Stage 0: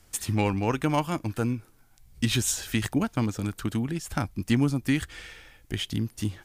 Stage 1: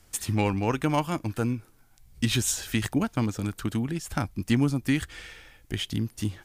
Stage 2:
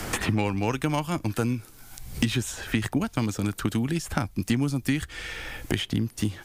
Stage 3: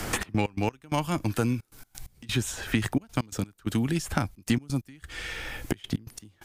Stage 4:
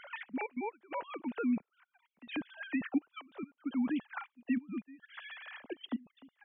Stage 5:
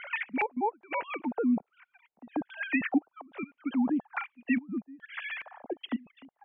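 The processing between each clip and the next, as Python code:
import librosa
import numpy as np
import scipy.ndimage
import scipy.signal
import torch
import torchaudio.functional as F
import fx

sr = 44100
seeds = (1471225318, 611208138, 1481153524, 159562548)

y1 = x
y2 = fx.band_squash(y1, sr, depth_pct=100)
y3 = fx.step_gate(y2, sr, bpm=131, pattern='xx.x.x..xxxx', floor_db=-24.0, edge_ms=4.5)
y4 = fx.sine_speech(y3, sr)
y4 = y4 * 10.0 ** (-8.5 / 20.0)
y5 = fx.filter_lfo_lowpass(y4, sr, shape='square', hz=1.2, low_hz=780.0, high_hz=2400.0, q=3.0)
y5 = y5 * 10.0 ** (4.0 / 20.0)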